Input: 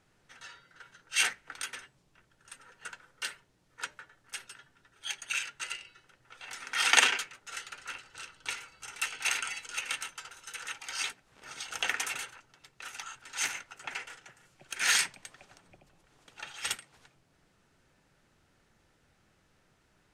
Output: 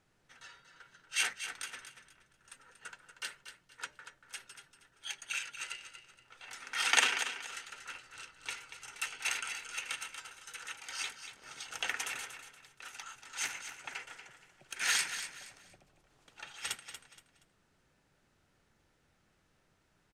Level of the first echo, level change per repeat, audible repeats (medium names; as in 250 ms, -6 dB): -10.0 dB, -10.5 dB, 3